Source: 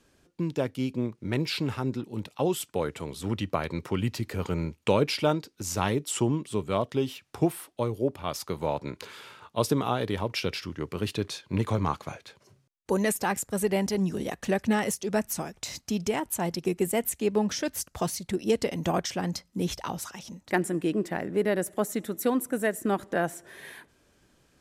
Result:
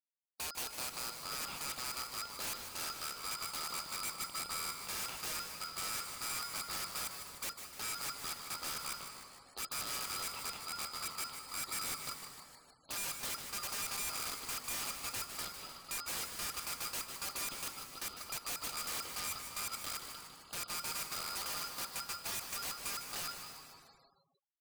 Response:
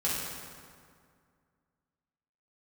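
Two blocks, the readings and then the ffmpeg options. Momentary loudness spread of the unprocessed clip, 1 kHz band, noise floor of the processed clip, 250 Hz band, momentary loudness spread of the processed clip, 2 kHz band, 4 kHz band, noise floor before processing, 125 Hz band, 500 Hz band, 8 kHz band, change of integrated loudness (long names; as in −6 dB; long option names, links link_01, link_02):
8 LU, −10.5 dB, −64 dBFS, −28.0 dB, 5 LU, −8.0 dB, −2.5 dB, −66 dBFS, −26.0 dB, −26.0 dB, −2.5 dB, −9.5 dB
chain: -filter_complex "[0:a]acrusher=bits=4:mix=0:aa=0.5,asubboost=boost=9:cutoff=120,areverse,acompressor=threshold=-30dB:ratio=8,areverse,asoftclip=type=tanh:threshold=-22dB,asplit=2[link_01][link_02];[link_02]highpass=frequency=720:poles=1,volume=11dB,asoftclip=type=tanh:threshold=-22.5dB[link_03];[link_01][link_03]amix=inputs=2:normalize=0,lowpass=frequency=1200:poles=1,volume=-6dB,lowpass=frequency=2700:width_type=q:width=0.5098,lowpass=frequency=2700:width_type=q:width=0.6013,lowpass=frequency=2700:width_type=q:width=0.9,lowpass=frequency=2700:width_type=q:width=2.563,afreqshift=-3200,aeval=exprs='val(0)*sin(2*PI*1800*n/s)':channel_layout=same,aeval=exprs='(mod(53.1*val(0)+1,2)-1)/53.1':channel_layout=same,asplit=8[link_04][link_05][link_06][link_07][link_08][link_09][link_10][link_11];[link_05]adelay=152,afreqshift=-140,volume=-10dB[link_12];[link_06]adelay=304,afreqshift=-280,volume=-14.3dB[link_13];[link_07]adelay=456,afreqshift=-420,volume=-18.6dB[link_14];[link_08]adelay=608,afreqshift=-560,volume=-22.9dB[link_15];[link_09]adelay=760,afreqshift=-700,volume=-27.2dB[link_16];[link_10]adelay=912,afreqshift=-840,volume=-31.5dB[link_17];[link_11]adelay=1064,afreqshift=-980,volume=-35.8dB[link_18];[link_04][link_12][link_13][link_14][link_15][link_16][link_17][link_18]amix=inputs=8:normalize=0,asplit=2[link_19][link_20];[1:a]atrim=start_sample=2205,adelay=149[link_21];[link_20][link_21]afir=irnorm=-1:irlink=0,volume=-16.5dB[link_22];[link_19][link_22]amix=inputs=2:normalize=0,afftfilt=real='re*gte(hypot(re,im),0.000708)':imag='im*gte(hypot(re,im),0.000708)':win_size=1024:overlap=0.75,volume=1dB"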